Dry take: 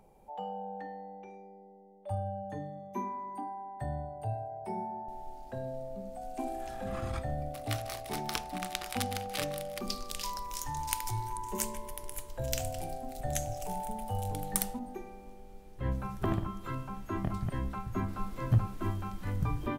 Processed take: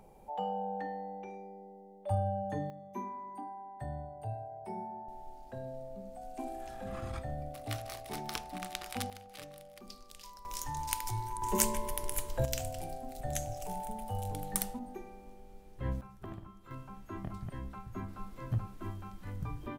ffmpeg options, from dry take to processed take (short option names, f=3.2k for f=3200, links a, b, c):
-af "asetnsamples=n=441:p=0,asendcmd='2.7 volume volume -4dB;9.1 volume volume -14dB;10.45 volume volume -1.5dB;11.42 volume volume 5.5dB;12.45 volume volume -2.5dB;16.01 volume volume -14dB;16.71 volume volume -7.5dB',volume=3.5dB"